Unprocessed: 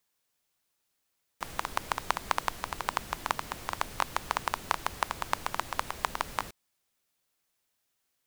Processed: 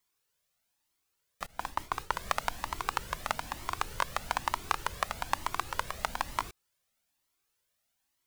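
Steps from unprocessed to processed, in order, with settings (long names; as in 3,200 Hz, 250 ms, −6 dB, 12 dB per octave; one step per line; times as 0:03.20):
0:01.46–0:02.19: downward expander −33 dBFS
flanger whose copies keep moving one way rising 1.1 Hz
level +3.5 dB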